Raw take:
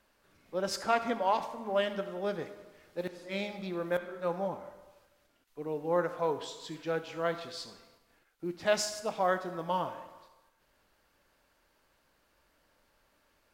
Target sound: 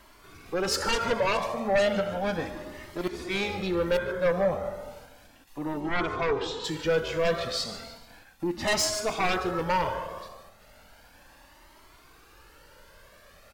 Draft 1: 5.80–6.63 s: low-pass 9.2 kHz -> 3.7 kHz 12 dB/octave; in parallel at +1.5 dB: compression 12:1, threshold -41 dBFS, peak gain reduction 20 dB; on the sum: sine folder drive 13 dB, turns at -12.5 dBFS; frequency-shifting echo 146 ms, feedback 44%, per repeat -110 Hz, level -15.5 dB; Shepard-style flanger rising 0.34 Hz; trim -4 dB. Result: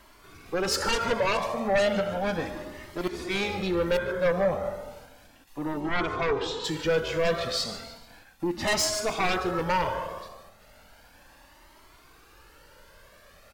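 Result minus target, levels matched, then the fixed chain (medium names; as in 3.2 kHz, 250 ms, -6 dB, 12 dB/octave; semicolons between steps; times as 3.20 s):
compression: peak gain reduction -5.5 dB
5.80–6.63 s: low-pass 9.2 kHz -> 3.7 kHz 12 dB/octave; in parallel at +1.5 dB: compression 12:1, threshold -47 dBFS, peak gain reduction 25.5 dB; on the sum: sine folder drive 13 dB, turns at -12.5 dBFS; frequency-shifting echo 146 ms, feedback 44%, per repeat -110 Hz, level -15.5 dB; Shepard-style flanger rising 0.34 Hz; trim -4 dB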